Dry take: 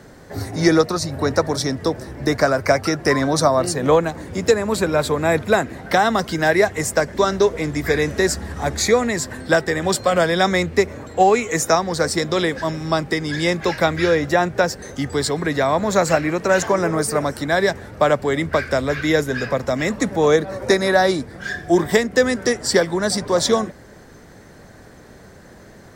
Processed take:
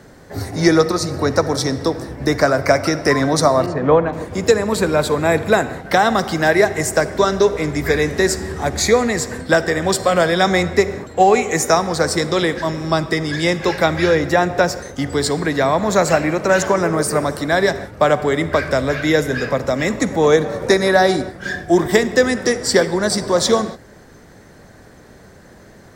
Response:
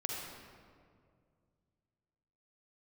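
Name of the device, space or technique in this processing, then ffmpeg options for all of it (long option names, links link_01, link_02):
keyed gated reverb: -filter_complex "[0:a]asplit=3[link_01][link_02][link_03];[1:a]atrim=start_sample=2205[link_04];[link_02][link_04]afir=irnorm=-1:irlink=0[link_05];[link_03]apad=whole_len=1144562[link_06];[link_05][link_06]sidechaingate=range=-33dB:threshold=-32dB:ratio=16:detection=peak,volume=-11dB[link_07];[link_01][link_07]amix=inputs=2:normalize=0,asettb=1/sr,asplit=3[link_08][link_09][link_10];[link_08]atrim=end=3.664[link_11];[link_09]atrim=start=3.66:end=4.13,asetpts=PTS-STARTPTS,afade=type=in:duration=0.004:curve=qsin,afade=type=out:start_time=0.466:duration=0.004:curve=qsin,lowpass=2000[link_12];[link_10]atrim=start=4.126[link_13];[link_11][link_12]acrossfade=duration=0.004:curve1=hsin:curve2=qsin[link_14];[link_14][link_13]acrossfade=duration=0.004:curve1=qsin:curve2=hsin"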